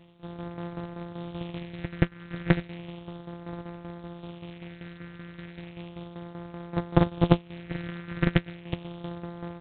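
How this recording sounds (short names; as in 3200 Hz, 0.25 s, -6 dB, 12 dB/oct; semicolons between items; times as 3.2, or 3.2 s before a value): a buzz of ramps at a fixed pitch in blocks of 256 samples; tremolo saw down 5.2 Hz, depth 65%; phasing stages 4, 0.34 Hz, lowest notch 710–2800 Hz; G.726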